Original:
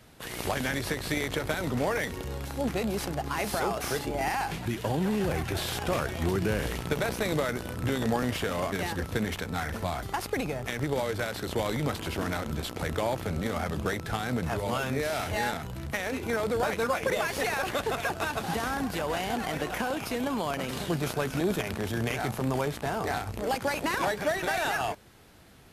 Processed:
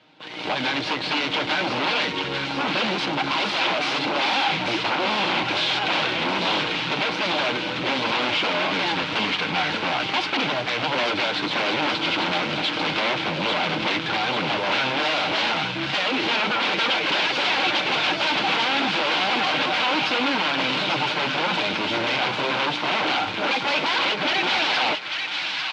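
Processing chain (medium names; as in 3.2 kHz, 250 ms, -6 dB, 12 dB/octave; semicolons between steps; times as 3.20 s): comb 6.5 ms, depth 51%; level rider gain up to 13 dB; wavefolder -18 dBFS; cabinet simulation 340–3900 Hz, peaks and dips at 440 Hz -10 dB, 670 Hz -6 dB, 1.2 kHz -6 dB, 1.8 kHz -9 dB; feedback echo behind a high-pass 843 ms, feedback 63%, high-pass 1.4 kHz, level -4 dB; trim +5 dB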